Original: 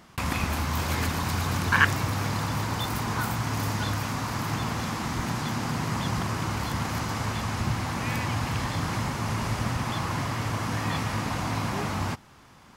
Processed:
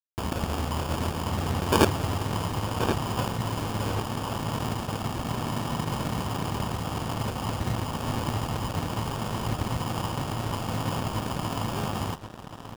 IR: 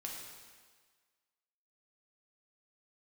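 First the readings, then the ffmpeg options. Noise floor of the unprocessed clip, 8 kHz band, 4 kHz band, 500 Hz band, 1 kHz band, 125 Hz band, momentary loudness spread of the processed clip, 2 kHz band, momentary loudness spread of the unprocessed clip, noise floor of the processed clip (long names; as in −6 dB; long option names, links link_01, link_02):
−52 dBFS, −2.5 dB, −1.0 dB, +4.5 dB, −0.5 dB, −1.0 dB, 4 LU, −8.0 dB, 2 LU, −40 dBFS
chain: -filter_complex "[0:a]acrusher=samples=22:mix=1:aa=0.000001,asplit=2[link_01][link_02];[link_02]adelay=1077,lowpass=frequency=4500:poles=1,volume=-7dB,asplit=2[link_03][link_04];[link_04]adelay=1077,lowpass=frequency=4500:poles=1,volume=0.35,asplit=2[link_05][link_06];[link_06]adelay=1077,lowpass=frequency=4500:poles=1,volume=0.35,asplit=2[link_07][link_08];[link_08]adelay=1077,lowpass=frequency=4500:poles=1,volume=0.35[link_09];[link_01][link_03][link_05][link_07][link_09]amix=inputs=5:normalize=0,aeval=exprs='sgn(val(0))*max(abs(val(0))-0.015,0)':channel_layout=same,volume=1dB"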